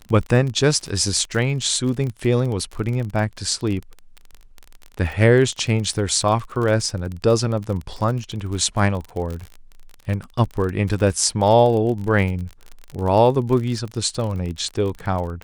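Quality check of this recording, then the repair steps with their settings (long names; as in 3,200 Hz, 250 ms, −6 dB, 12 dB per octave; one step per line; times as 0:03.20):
surface crackle 36 per second −26 dBFS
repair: click removal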